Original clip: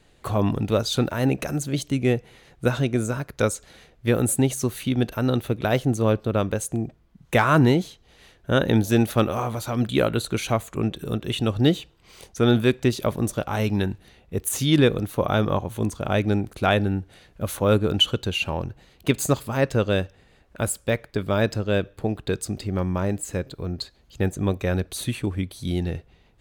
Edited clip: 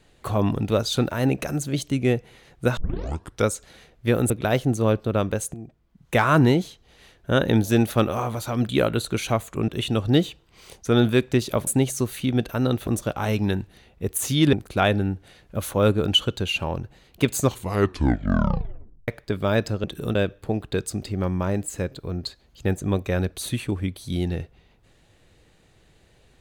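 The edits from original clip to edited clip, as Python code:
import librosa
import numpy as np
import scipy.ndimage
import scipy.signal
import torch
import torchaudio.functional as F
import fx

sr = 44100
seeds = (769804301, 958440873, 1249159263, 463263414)

y = fx.edit(x, sr, fx.tape_start(start_s=2.77, length_s=0.68),
    fx.move(start_s=4.3, length_s=1.2, to_s=13.18),
    fx.fade_in_from(start_s=6.74, length_s=0.72, floor_db=-14.0),
    fx.move(start_s=10.88, length_s=0.31, to_s=21.7),
    fx.cut(start_s=14.84, length_s=1.55),
    fx.tape_stop(start_s=19.22, length_s=1.72), tone=tone)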